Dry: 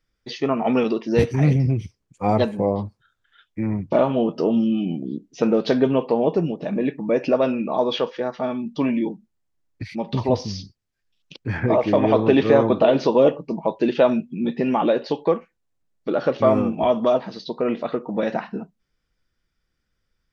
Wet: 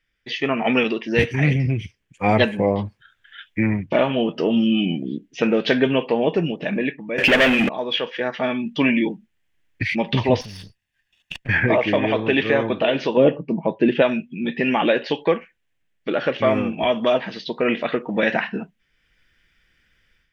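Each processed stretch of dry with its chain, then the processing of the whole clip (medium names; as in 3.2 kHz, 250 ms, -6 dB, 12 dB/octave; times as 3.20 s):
7.18–7.69 s: hum notches 60/120/180/240/300/360/420/480 Hz + waveshaping leveller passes 5
10.41–11.49 s: comb filter that takes the minimum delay 1.1 ms + compression 4:1, threshold -37 dBFS
13.17–14.02 s: high-pass 110 Hz + tilt EQ -3.5 dB/octave
whole clip: high-order bell 2.3 kHz +12.5 dB 1.3 oct; level rider; trim -3 dB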